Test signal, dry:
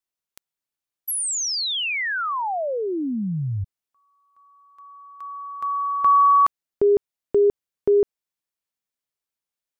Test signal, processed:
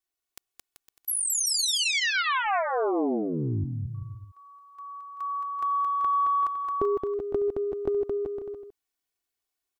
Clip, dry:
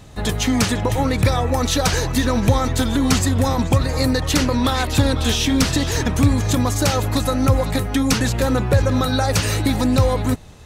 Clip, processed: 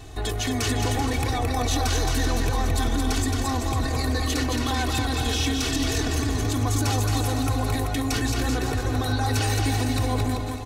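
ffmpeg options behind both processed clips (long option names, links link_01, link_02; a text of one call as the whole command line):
ffmpeg -i in.wav -af "aecho=1:1:2.7:0.94,acompressor=threshold=-25dB:ratio=6:attack=6.2:release=21:knee=6:detection=peak,aecho=1:1:220|385|508.8|601.6|671.2:0.631|0.398|0.251|0.158|0.1,volume=-1.5dB" out.wav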